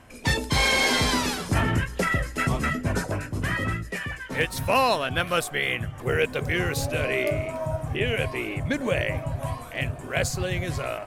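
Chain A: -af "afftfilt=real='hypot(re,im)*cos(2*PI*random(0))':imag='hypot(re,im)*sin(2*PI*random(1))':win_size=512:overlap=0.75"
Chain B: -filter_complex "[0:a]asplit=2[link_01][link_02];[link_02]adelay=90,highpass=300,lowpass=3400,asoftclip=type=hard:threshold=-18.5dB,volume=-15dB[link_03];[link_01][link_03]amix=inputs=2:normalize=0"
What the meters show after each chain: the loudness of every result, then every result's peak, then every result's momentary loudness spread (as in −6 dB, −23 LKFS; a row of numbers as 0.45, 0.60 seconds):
−31.5, −25.5 LKFS; −13.0, −10.5 dBFS; 9, 9 LU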